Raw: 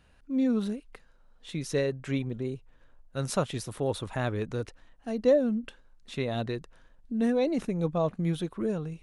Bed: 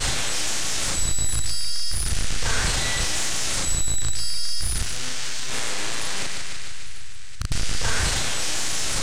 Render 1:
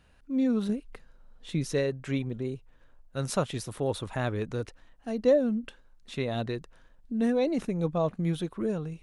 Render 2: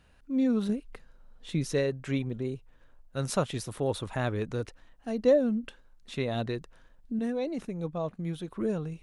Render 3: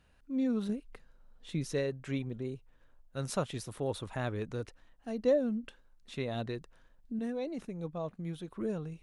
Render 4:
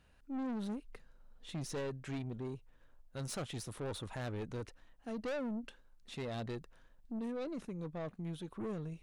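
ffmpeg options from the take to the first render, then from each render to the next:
-filter_complex "[0:a]asettb=1/sr,asplit=3[s0][s1][s2];[s0]atrim=end=0.694[s3];[s1]atrim=start=0.69:end=1.73,asetpts=PTS-STARTPTS,afade=t=in:d=0.004:c=qsin,afade=t=out:st=1.036:d=0.004:c=qsin,lowshelf=f=420:g=6[s4];[s2]atrim=start=1.726[s5];[s3][s4]acrossfade=d=0.004:c1=hsin:c2=qsin[s6];[s6][s5]acrossfade=d=0.004:c1=qsin:c2=hsin"
-filter_complex "[0:a]asplit=3[s0][s1][s2];[s0]atrim=end=7.192[s3];[s1]atrim=start=7.188:end=8.482,asetpts=PTS-STARTPTS,volume=0.531[s4];[s2]atrim=start=8.478[s5];[s3][s4]acrossfade=d=0.004:c1=hsin:c2=hsin[s6];[s6][s5]acrossfade=d=0.004:c1=hsin:c2=hsin"
-af "volume=0.562"
-af "aeval=exprs='(tanh(63.1*val(0)+0.25)-tanh(0.25))/63.1':c=same"

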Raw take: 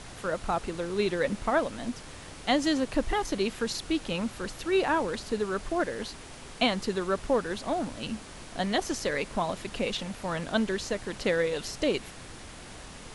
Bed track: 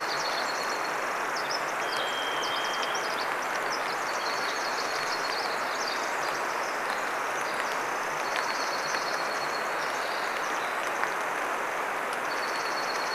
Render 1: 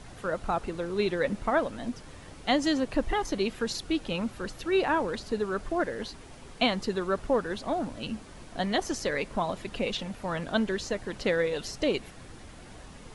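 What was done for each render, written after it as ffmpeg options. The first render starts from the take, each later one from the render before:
-af "afftdn=nr=7:nf=-45"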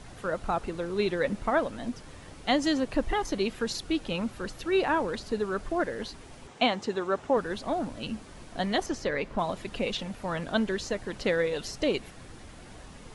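-filter_complex "[0:a]asettb=1/sr,asplit=3[s0][s1][s2];[s0]atrim=end=6.474[s3];[s1]atrim=start=6.47:end=7.37,asetpts=PTS-STARTPTS,afade=t=in:d=0.004:c=qsin,afade=t=out:st=0.896:d=0.004:c=qsin,highpass=110,equalizer=f=180:t=q:w=4:g=-5,equalizer=f=810:t=q:w=4:g=5,equalizer=f=4600:t=q:w=4:g=-5,lowpass=f=8400:w=0.5412,lowpass=f=8400:w=1.3066[s4];[s2]atrim=start=7.366[s5];[s3][s4]acrossfade=d=0.004:c1=hsin:c2=qsin[s6];[s6][s5]acrossfade=d=0.004:c1=qsin:c2=hsin,asettb=1/sr,asplit=3[s7][s8][s9];[s7]atrim=end=8.864[s10];[s8]atrim=start=8.86:end=9.39,asetpts=PTS-STARTPTS,afade=t=in:d=0.004:c=qsin,afade=t=out:st=0.526:d=0.004:c=qsin,aemphasis=mode=reproduction:type=50fm[s11];[s9]atrim=start=9.386[s12];[s10][s11]acrossfade=d=0.004:c1=hsin:c2=qsin[s13];[s13][s12]acrossfade=d=0.004:c1=qsin:c2=hsin"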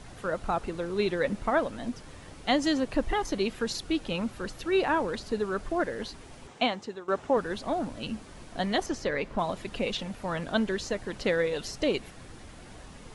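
-filter_complex "[0:a]asplit=2[s0][s1];[s0]atrim=end=7.08,asetpts=PTS-STARTPTS,afade=t=out:st=6.51:d=0.57:silence=0.177828[s2];[s1]atrim=start=7.08,asetpts=PTS-STARTPTS,afade=t=in:d=0.004:c=hsin:silence=0.177828[s3];[s2][s3]concat=n=2:v=0:a=1"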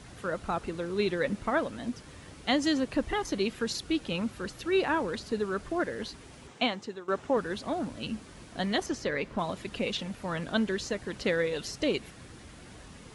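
-af "highpass=50,equalizer=f=740:w=1.3:g=-4"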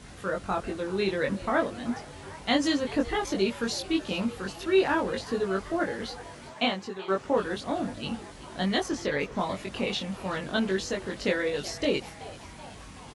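-filter_complex "[0:a]asplit=2[s0][s1];[s1]adelay=21,volume=0.794[s2];[s0][s2]amix=inputs=2:normalize=0,asplit=7[s3][s4][s5][s6][s7][s8][s9];[s4]adelay=379,afreqshift=150,volume=0.126[s10];[s5]adelay=758,afreqshift=300,volume=0.0794[s11];[s6]adelay=1137,afreqshift=450,volume=0.0501[s12];[s7]adelay=1516,afreqshift=600,volume=0.0316[s13];[s8]adelay=1895,afreqshift=750,volume=0.0197[s14];[s9]adelay=2274,afreqshift=900,volume=0.0124[s15];[s3][s10][s11][s12][s13][s14][s15]amix=inputs=7:normalize=0"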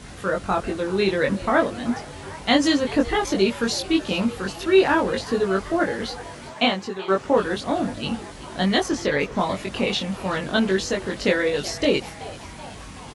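-af "volume=2.11"

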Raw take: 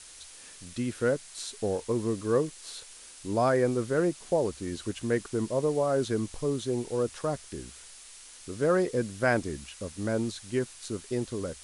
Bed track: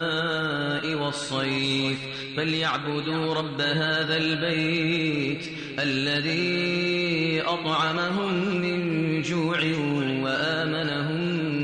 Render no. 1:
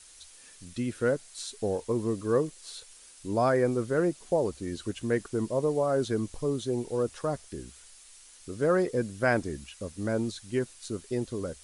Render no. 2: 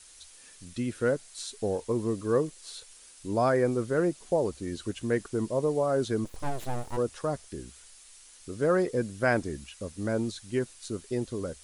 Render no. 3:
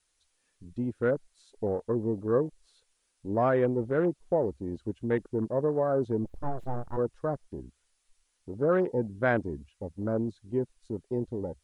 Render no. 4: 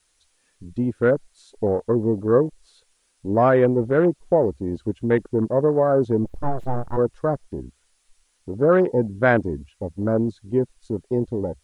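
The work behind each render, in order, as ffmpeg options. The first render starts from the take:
-af "afftdn=nr=6:nf=-49"
-filter_complex "[0:a]asplit=3[s0][s1][s2];[s0]afade=t=out:st=6.24:d=0.02[s3];[s1]aeval=exprs='abs(val(0))':c=same,afade=t=in:st=6.24:d=0.02,afade=t=out:st=6.96:d=0.02[s4];[s2]afade=t=in:st=6.96:d=0.02[s5];[s3][s4][s5]amix=inputs=3:normalize=0"
-af "afwtdn=0.0178,highshelf=f=3600:g=-8.5"
-af "volume=2.66"

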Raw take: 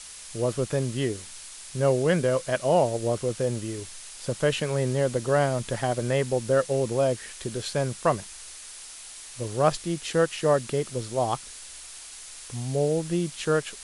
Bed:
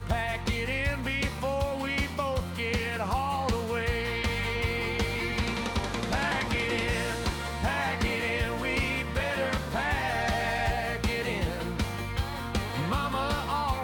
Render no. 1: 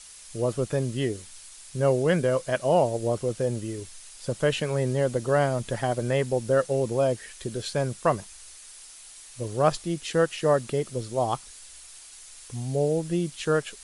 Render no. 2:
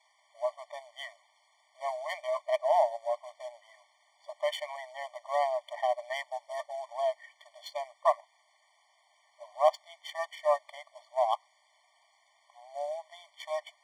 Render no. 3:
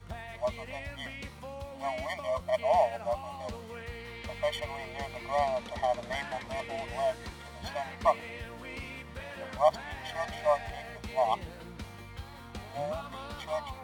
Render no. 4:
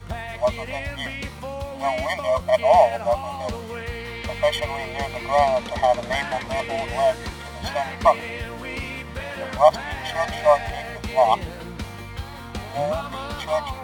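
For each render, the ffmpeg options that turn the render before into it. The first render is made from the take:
-af "afftdn=nr=6:nf=-43"
-af "adynamicsmooth=sensitivity=4:basefreq=1500,afftfilt=real='re*eq(mod(floor(b*sr/1024/600),2),1)':imag='im*eq(mod(floor(b*sr/1024/600),2),1)':win_size=1024:overlap=0.75"
-filter_complex "[1:a]volume=0.224[s0];[0:a][s0]amix=inputs=2:normalize=0"
-af "volume=3.35,alimiter=limit=0.708:level=0:latency=1"

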